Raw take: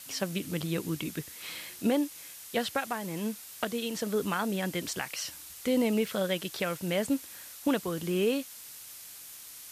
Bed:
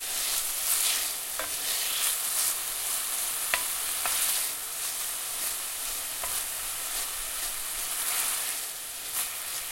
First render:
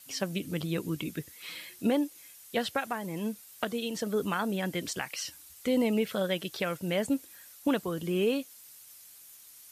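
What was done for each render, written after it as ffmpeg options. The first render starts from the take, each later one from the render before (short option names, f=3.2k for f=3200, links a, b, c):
-af "afftdn=nr=9:nf=-47"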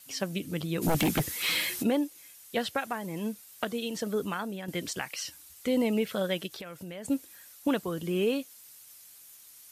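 -filter_complex "[0:a]asplit=3[a][b][c];[a]afade=t=out:st=0.81:d=0.02[d];[b]aeval=exprs='0.0891*sin(PI/2*3.55*val(0)/0.0891)':c=same,afade=t=in:st=0.81:d=0.02,afade=t=out:st=1.82:d=0.02[e];[c]afade=t=in:st=1.82:d=0.02[f];[d][e][f]amix=inputs=3:normalize=0,asplit=3[g][h][i];[g]afade=t=out:st=6.46:d=0.02[j];[h]acompressor=threshold=-38dB:ratio=6:attack=3.2:release=140:knee=1:detection=peak,afade=t=in:st=6.46:d=0.02,afade=t=out:st=7.04:d=0.02[k];[i]afade=t=in:st=7.04:d=0.02[l];[j][k][l]amix=inputs=3:normalize=0,asplit=2[m][n];[m]atrim=end=4.68,asetpts=PTS-STARTPTS,afade=t=out:st=4.1:d=0.58:silence=0.354813[o];[n]atrim=start=4.68,asetpts=PTS-STARTPTS,afade=t=in:d=0.004:c=hsin:silence=0.354813[p];[o][p]concat=n=2:v=0:a=1"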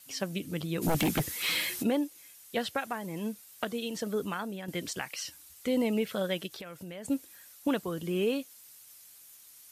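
-af "volume=-1.5dB"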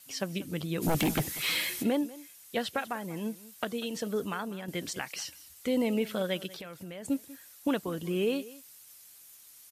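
-af "aecho=1:1:192:0.112"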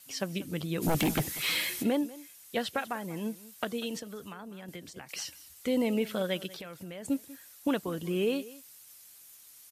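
-filter_complex "[0:a]asettb=1/sr,asplit=3[a][b][c];[a]atrim=end=3.994[d];[b]atrim=start=3.99:end=5.09,asetpts=PTS-STARTPTS,afade=t=in:d=0.004:c=qsin,afade=t=out:st=1.096:d=0.004:c=qsin,acrossover=split=140|870[e][f][g];[e]acompressor=threshold=-54dB:ratio=4[h];[f]acompressor=threshold=-45dB:ratio=4[i];[g]acompressor=threshold=-49dB:ratio=4[j];[h][i][j]amix=inputs=3:normalize=0[k];[c]atrim=start=5.086[l];[d][k]acrossfade=d=0.004:c1=hsin:c2=qsin[m];[m][l]acrossfade=d=0.004:c1=qsin:c2=hsin"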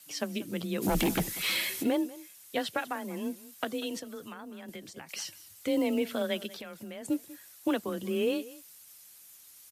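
-af "afreqshift=25,acrusher=bits=9:mode=log:mix=0:aa=0.000001"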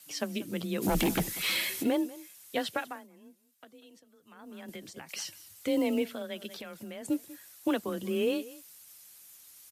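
-filter_complex "[0:a]asplit=5[a][b][c][d][e];[a]atrim=end=3.08,asetpts=PTS-STARTPTS,afade=t=out:st=2.74:d=0.34:silence=0.1[f];[b]atrim=start=3.08:end=4.25,asetpts=PTS-STARTPTS,volume=-20dB[g];[c]atrim=start=4.25:end=6.25,asetpts=PTS-STARTPTS,afade=t=in:d=0.34:silence=0.1,afade=t=out:st=1.76:d=0.24:c=qua:silence=0.398107[h];[d]atrim=start=6.25:end=6.28,asetpts=PTS-STARTPTS,volume=-8dB[i];[e]atrim=start=6.28,asetpts=PTS-STARTPTS,afade=t=in:d=0.24:c=qua:silence=0.398107[j];[f][g][h][i][j]concat=n=5:v=0:a=1"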